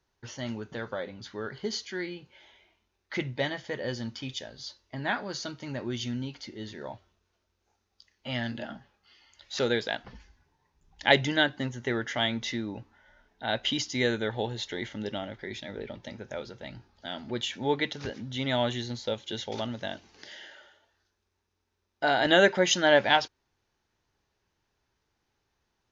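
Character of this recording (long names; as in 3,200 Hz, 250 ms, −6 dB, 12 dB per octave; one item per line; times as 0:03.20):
background noise floor −79 dBFS
spectral slope −4.0 dB per octave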